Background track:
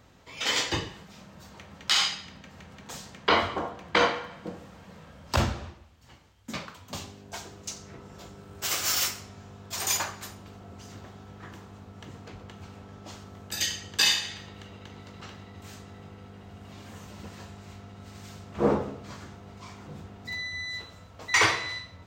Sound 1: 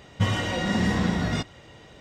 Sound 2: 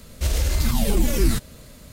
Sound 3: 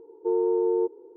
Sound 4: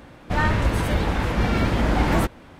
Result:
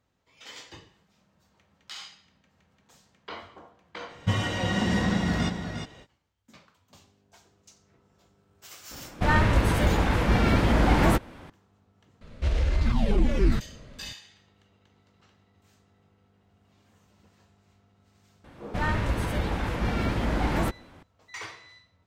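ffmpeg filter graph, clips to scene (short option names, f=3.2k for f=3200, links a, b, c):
-filter_complex "[4:a]asplit=2[a][b];[0:a]volume=-18dB[c];[1:a]aecho=1:1:357:0.473[d];[2:a]lowpass=2.7k[e];[d]atrim=end=2,asetpts=PTS-STARTPTS,volume=-2dB,afade=t=in:d=0.05,afade=t=out:st=1.95:d=0.05,adelay=4070[f];[a]atrim=end=2.59,asetpts=PTS-STARTPTS,volume=-0.5dB,afade=t=in:d=0.004:c=hsin,afade=t=out:st=2.586:d=0.004:c=hsin,adelay=8910[g];[e]atrim=end=1.92,asetpts=PTS-STARTPTS,volume=-2.5dB,afade=t=in:d=0.004:c=hsin,afade=t=out:st=1.916:d=0.004:c=hsin,adelay=12210[h];[b]atrim=end=2.59,asetpts=PTS-STARTPTS,volume=-6dB,afade=t=in:d=0.004:c=hsin,afade=t=out:st=2.586:d=0.004:c=hsin,adelay=813204S[i];[c][f][g][h][i]amix=inputs=5:normalize=0"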